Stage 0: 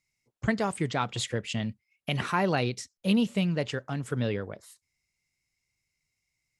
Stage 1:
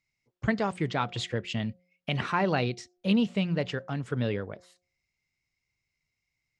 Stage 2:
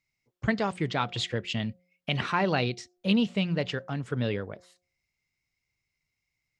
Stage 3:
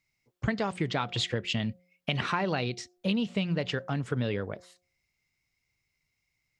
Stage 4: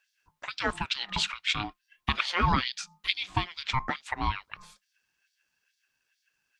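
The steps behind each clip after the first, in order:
LPF 4900 Hz 12 dB/oct; de-hum 179 Hz, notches 4
dynamic EQ 3700 Hz, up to +4 dB, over -43 dBFS, Q 0.93
compressor, threshold -28 dBFS, peak gain reduction 8.5 dB; gain +3 dB
LFO high-pass sine 2.3 Hz 350–4100 Hz; ring modulator 520 Hz; gain +5 dB

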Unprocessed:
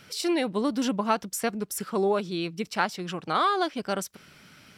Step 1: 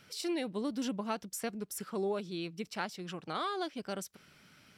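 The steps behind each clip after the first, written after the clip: dynamic EQ 1100 Hz, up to -5 dB, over -37 dBFS, Q 0.89; gain -8 dB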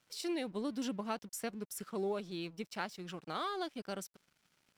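crossover distortion -58 dBFS; gain -2 dB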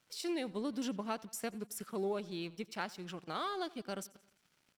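feedback echo 88 ms, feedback 57%, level -22 dB

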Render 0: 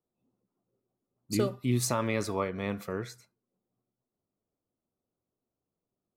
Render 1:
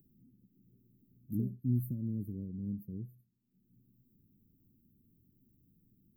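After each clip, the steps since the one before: inverse Chebyshev band-stop 780–6600 Hz, stop band 60 dB; upward compressor, threshold -46 dBFS; gain -1.5 dB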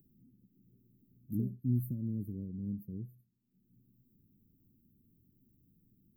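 nothing audible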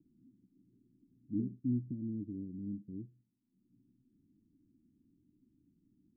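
vocal tract filter u; gain +7 dB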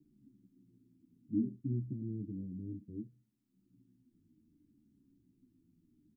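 endless flanger 10.6 ms -0.64 Hz; gain +4.5 dB

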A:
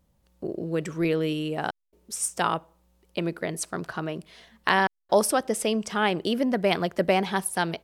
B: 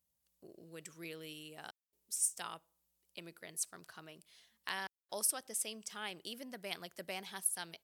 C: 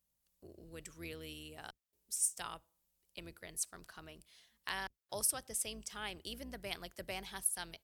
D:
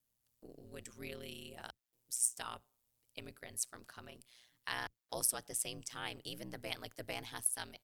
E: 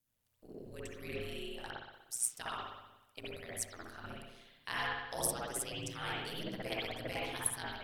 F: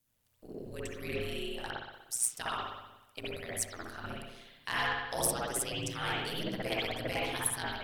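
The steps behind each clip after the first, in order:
HPF 43 Hz; pre-emphasis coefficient 0.9; gain -5.5 dB
octaver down 2 oct, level -2 dB
ring modulator 61 Hz; gain +3 dB
spring tank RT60 1 s, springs 60 ms, chirp 35 ms, DRR -6 dB; phaser 1.7 Hz, delay 3 ms, feedback 27%; gain -2 dB
soft clip -25.5 dBFS, distortion -18 dB; gain +5.5 dB

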